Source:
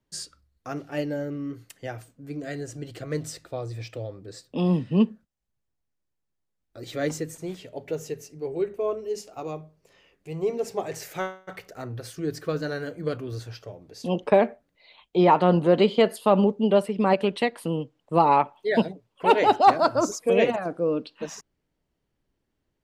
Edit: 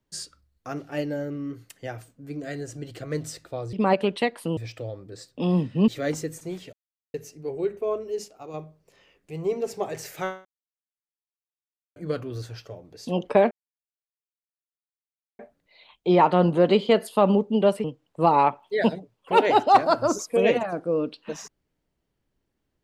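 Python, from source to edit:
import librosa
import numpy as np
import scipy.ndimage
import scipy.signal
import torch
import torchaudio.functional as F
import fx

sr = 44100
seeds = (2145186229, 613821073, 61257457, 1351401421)

y = fx.edit(x, sr, fx.cut(start_s=5.04, length_s=1.81),
    fx.silence(start_s=7.7, length_s=0.41),
    fx.clip_gain(start_s=9.25, length_s=0.26, db=-6.0),
    fx.silence(start_s=11.42, length_s=1.51),
    fx.insert_silence(at_s=14.48, length_s=1.88),
    fx.move(start_s=16.93, length_s=0.84, to_s=3.73), tone=tone)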